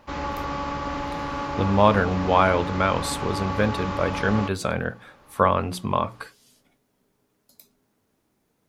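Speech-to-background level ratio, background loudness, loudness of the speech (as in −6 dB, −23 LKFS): 6.5 dB, −30.0 LKFS, −23.5 LKFS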